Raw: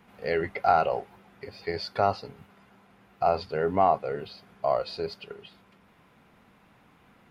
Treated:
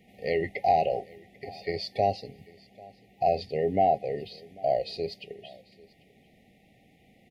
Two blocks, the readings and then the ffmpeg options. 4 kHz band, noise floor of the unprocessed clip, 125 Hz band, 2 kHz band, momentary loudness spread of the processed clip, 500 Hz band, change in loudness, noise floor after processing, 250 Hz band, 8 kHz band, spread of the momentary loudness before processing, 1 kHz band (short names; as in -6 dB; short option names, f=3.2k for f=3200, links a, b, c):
0.0 dB, -60 dBFS, 0.0 dB, -3.0 dB, 19 LU, 0.0 dB, -0.5 dB, -61 dBFS, 0.0 dB, n/a, 21 LU, -1.0 dB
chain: -af "afftfilt=real='re*(1-between(b*sr/4096,810,1800))':imag='im*(1-between(b*sr/4096,810,1800))':win_size=4096:overlap=0.75,aecho=1:1:792:0.0668"